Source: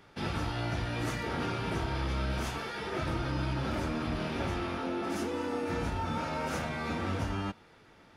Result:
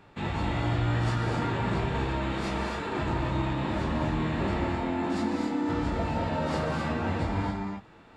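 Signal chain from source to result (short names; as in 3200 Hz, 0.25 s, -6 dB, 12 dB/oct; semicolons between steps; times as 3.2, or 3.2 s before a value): high shelf 10000 Hz -6.5 dB; formant shift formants -5 st; non-linear reverb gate 0.3 s rising, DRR 1.5 dB; gain +2.5 dB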